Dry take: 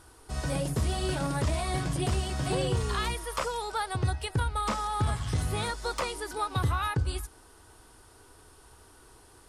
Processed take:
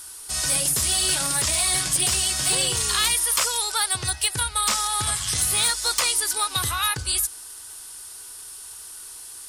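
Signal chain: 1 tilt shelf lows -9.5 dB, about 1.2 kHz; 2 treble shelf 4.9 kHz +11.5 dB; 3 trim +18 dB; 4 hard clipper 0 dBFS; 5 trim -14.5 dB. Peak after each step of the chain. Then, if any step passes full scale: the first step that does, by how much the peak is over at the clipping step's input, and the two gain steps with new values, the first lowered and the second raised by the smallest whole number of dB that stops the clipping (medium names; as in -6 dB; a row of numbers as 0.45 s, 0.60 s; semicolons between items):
-14.5 dBFS, -8.5 dBFS, +9.5 dBFS, 0.0 dBFS, -14.5 dBFS; step 3, 9.5 dB; step 3 +8 dB, step 5 -4.5 dB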